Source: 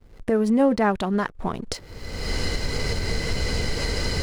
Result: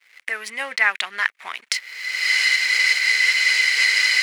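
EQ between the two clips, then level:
high-pass with resonance 2,100 Hz, resonance Q 4
+7.5 dB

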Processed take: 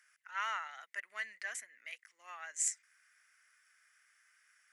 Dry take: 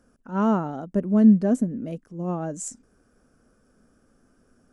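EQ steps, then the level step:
four-pole ladder high-pass 1,900 Hz, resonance 80%
+13.0 dB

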